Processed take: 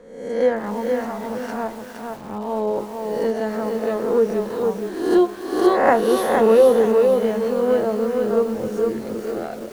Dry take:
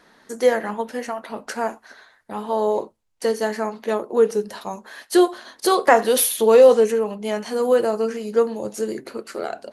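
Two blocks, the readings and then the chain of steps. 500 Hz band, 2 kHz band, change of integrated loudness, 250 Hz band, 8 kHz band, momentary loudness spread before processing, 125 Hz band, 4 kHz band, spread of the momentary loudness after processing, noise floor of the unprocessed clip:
+0.5 dB, -1.5 dB, 0.0 dB, +3.5 dB, -11.5 dB, 17 LU, no reading, -6.0 dB, 13 LU, -58 dBFS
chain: reverse spectral sustain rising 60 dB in 0.81 s; RIAA curve playback; bit-crushed delay 463 ms, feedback 35%, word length 6-bit, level -4 dB; trim -5.5 dB

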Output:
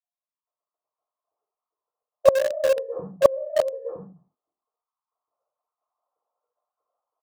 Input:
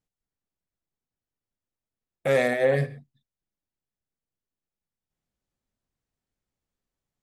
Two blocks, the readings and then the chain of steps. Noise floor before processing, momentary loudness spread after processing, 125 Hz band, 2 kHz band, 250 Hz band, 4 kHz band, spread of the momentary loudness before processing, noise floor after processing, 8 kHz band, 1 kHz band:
under -85 dBFS, 15 LU, -13.0 dB, -6.5 dB, -7.5 dB, +3.0 dB, 11 LU, under -85 dBFS, +6.5 dB, +3.5 dB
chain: formants replaced by sine waves; elliptic low-pass 1.2 kHz, stop band 40 dB; delay 963 ms -5.5 dB; gated-style reverb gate 190 ms falling, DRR -7 dB; inverted gate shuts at -19 dBFS, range -24 dB; in parallel at -8 dB: bit crusher 6-bit; on the sum: level rider gain up to 17 dB; loudspeaker Doppler distortion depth 0.18 ms; trim +1 dB

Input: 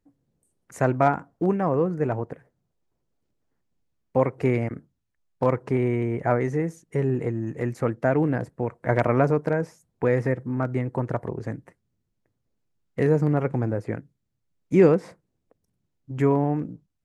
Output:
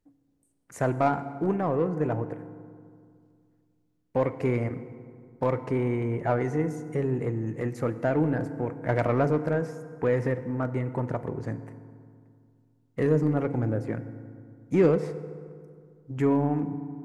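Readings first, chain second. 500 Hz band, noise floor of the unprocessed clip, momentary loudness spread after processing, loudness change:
-3.0 dB, -78 dBFS, 16 LU, -3.0 dB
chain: in parallel at -3.5 dB: saturation -22.5 dBFS, distortion -7 dB; on the sum: FDN reverb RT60 2.2 s, low-frequency decay 1.25×, high-frequency decay 0.55×, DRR 11 dB; trim -6 dB

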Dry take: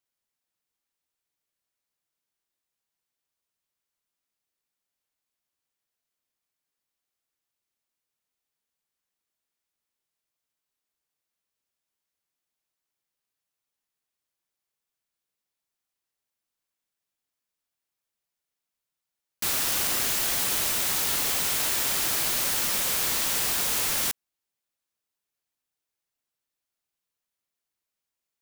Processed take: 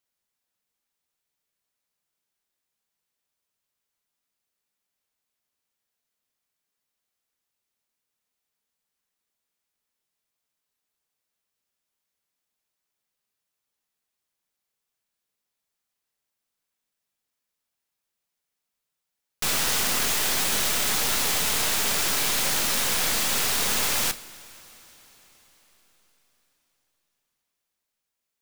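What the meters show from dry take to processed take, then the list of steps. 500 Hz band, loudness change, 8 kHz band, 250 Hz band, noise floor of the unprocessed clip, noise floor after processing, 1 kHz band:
+4.0 dB, +1.0 dB, +2.0 dB, +4.5 dB, under -85 dBFS, -84 dBFS, +4.0 dB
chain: tracing distortion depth 0.056 ms; two-slope reverb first 0.36 s, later 4.8 s, from -18 dB, DRR 9.5 dB; trim +2.5 dB

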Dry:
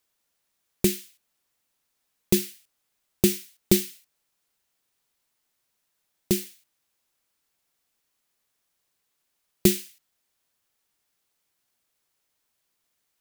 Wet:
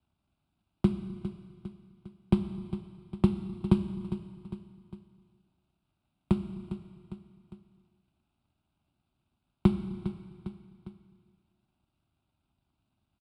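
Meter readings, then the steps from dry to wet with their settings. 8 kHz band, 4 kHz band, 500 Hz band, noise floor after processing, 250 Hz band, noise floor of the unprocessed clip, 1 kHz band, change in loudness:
under -30 dB, -18.0 dB, -8.5 dB, -81 dBFS, -1.0 dB, -77 dBFS, +5.5 dB, -7.0 dB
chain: median filter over 41 samples; high-pass 46 Hz; bass shelf 160 Hz +6.5 dB; transient shaper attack +3 dB, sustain -4 dB; resampled via 22.05 kHz; static phaser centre 1.8 kHz, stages 6; feedback delay 404 ms, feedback 37%, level -16 dB; Schroeder reverb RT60 1.4 s, combs from 28 ms, DRR 9.5 dB; three bands compressed up and down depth 40%

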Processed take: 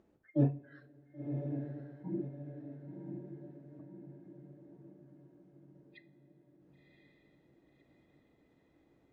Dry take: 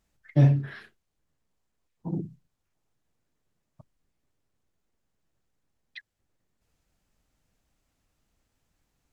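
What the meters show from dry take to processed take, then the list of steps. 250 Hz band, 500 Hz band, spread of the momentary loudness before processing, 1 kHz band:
-4.5 dB, -3.0 dB, 21 LU, -9.0 dB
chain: spectral noise reduction 18 dB; in parallel at +2 dB: upward compressor, threshold -26 dBFS; on the sum: band-pass filter 350 Hz, Q 1.7; echo that smears into a reverb 1056 ms, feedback 51%, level -5.5 dB; two-slope reverb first 0.35 s, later 3.1 s, from -18 dB, DRR 12 dB; trim -6 dB

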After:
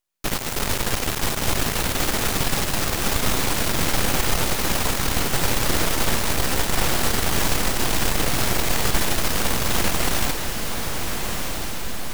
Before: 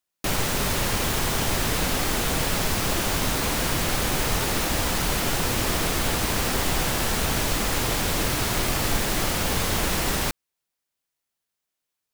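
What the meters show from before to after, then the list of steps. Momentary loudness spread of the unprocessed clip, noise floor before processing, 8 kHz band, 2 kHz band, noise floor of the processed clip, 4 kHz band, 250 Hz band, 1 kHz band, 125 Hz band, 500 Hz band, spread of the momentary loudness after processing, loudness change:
0 LU, -84 dBFS, +2.5 dB, +2.0 dB, -26 dBFS, +2.0 dB, +1.5 dB, +1.5 dB, +1.0 dB, +1.5 dB, 6 LU, +1.5 dB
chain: half-wave rectifier; echo that smears into a reverb 1377 ms, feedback 57%, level -5 dB; trim +4.5 dB

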